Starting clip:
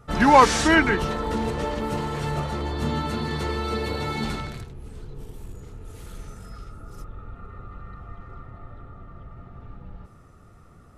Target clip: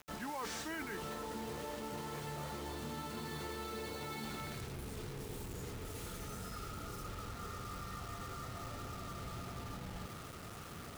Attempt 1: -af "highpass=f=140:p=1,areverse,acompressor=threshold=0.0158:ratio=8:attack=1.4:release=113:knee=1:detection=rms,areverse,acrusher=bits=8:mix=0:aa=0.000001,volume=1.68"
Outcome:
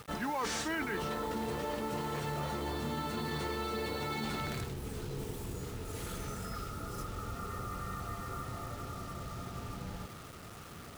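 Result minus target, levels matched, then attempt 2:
compression: peak gain reduction -7 dB
-af "highpass=f=140:p=1,areverse,acompressor=threshold=0.00631:ratio=8:attack=1.4:release=113:knee=1:detection=rms,areverse,acrusher=bits=8:mix=0:aa=0.000001,volume=1.68"

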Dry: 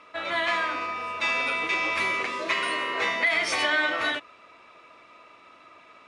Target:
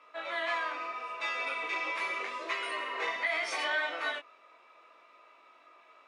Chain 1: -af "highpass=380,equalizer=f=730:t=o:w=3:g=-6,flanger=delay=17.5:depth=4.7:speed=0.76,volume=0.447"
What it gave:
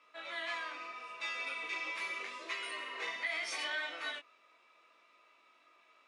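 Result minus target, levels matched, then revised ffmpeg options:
1 kHz band -3.5 dB
-af "highpass=380,equalizer=f=730:t=o:w=3:g=4,flanger=delay=17.5:depth=4.7:speed=0.76,volume=0.447"

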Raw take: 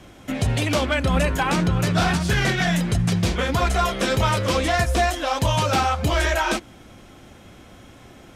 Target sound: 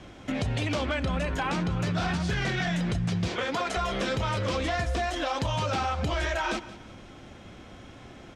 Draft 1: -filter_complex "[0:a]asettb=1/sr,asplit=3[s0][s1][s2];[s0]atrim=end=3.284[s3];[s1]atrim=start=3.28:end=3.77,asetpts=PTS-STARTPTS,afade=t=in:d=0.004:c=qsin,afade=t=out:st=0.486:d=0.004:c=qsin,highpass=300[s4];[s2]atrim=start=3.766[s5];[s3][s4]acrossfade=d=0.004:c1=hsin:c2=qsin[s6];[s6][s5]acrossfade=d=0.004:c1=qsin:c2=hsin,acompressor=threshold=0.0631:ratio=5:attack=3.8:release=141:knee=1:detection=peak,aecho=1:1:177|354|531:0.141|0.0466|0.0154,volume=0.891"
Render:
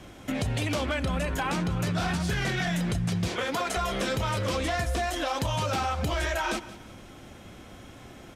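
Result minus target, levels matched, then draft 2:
8 kHz band +4.5 dB
-filter_complex "[0:a]asettb=1/sr,asplit=3[s0][s1][s2];[s0]atrim=end=3.284[s3];[s1]atrim=start=3.28:end=3.77,asetpts=PTS-STARTPTS,afade=t=in:d=0.004:c=qsin,afade=t=out:st=0.486:d=0.004:c=qsin,highpass=300[s4];[s2]atrim=start=3.766[s5];[s3][s4]acrossfade=d=0.004:c1=hsin:c2=qsin[s6];[s6][s5]acrossfade=d=0.004:c1=qsin:c2=hsin,acompressor=threshold=0.0631:ratio=5:attack=3.8:release=141:knee=1:detection=peak,lowpass=6100,aecho=1:1:177|354|531:0.141|0.0466|0.0154,volume=0.891"

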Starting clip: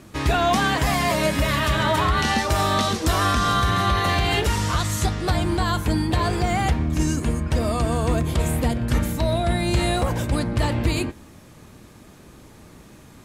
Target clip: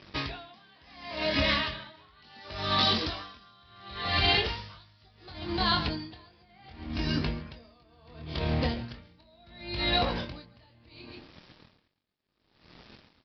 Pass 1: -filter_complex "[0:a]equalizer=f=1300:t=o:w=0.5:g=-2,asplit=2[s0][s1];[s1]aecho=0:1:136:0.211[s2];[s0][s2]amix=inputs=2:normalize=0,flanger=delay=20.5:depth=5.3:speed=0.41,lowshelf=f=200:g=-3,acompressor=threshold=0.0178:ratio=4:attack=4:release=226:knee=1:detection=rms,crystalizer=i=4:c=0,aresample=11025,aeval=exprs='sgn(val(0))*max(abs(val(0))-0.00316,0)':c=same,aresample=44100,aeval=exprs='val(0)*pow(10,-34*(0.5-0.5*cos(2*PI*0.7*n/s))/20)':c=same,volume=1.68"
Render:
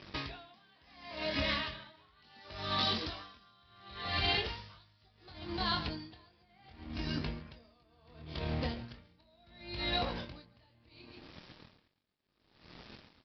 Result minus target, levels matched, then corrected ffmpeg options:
compression: peak gain reduction +6.5 dB
-filter_complex "[0:a]equalizer=f=1300:t=o:w=0.5:g=-2,asplit=2[s0][s1];[s1]aecho=0:1:136:0.211[s2];[s0][s2]amix=inputs=2:normalize=0,flanger=delay=20.5:depth=5.3:speed=0.41,lowshelf=f=200:g=-3,acompressor=threshold=0.0473:ratio=4:attack=4:release=226:knee=1:detection=rms,crystalizer=i=4:c=0,aresample=11025,aeval=exprs='sgn(val(0))*max(abs(val(0))-0.00316,0)':c=same,aresample=44100,aeval=exprs='val(0)*pow(10,-34*(0.5-0.5*cos(2*PI*0.7*n/s))/20)':c=same,volume=1.68"

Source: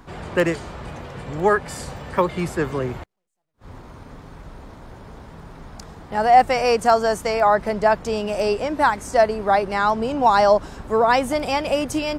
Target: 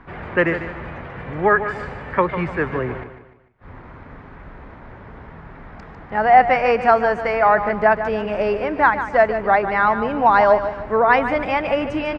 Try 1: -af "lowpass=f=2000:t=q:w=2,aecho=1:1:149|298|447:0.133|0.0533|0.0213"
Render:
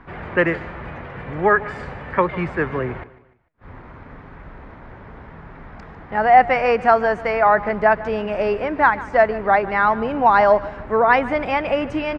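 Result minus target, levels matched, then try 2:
echo-to-direct -7 dB
-af "lowpass=f=2000:t=q:w=2,aecho=1:1:149|298|447|596:0.299|0.119|0.0478|0.0191"

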